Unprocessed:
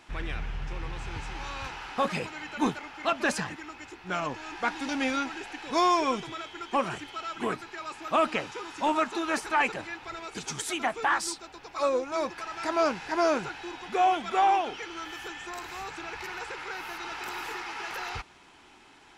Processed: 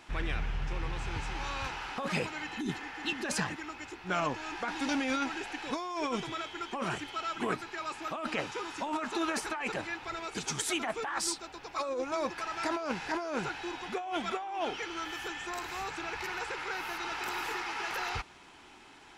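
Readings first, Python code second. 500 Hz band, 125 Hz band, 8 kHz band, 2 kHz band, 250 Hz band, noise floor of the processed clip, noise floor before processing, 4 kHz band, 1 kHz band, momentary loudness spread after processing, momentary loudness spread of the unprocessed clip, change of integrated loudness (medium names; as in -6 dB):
-6.0 dB, +0.5 dB, 0.0 dB, -3.0 dB, -3.0 dB, -54 dBFS, -55 dBFS, -1.5 dB, -7.0 dB, 6 LU, 13 LU, -4.5 dB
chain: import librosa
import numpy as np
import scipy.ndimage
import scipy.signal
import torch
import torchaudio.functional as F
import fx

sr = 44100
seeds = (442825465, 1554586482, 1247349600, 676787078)

y = fx.spec_repair(x, sr, seeds[0], start_s=2.53, length_s=0.69, low_hz=420.0, high_hz=2500.0, source='before')
y = fx.over_compress(y, sr, threshold_db=-30.0, ratio=-1.0)
y = y * 10.0 ** (-2.0 / 20.0)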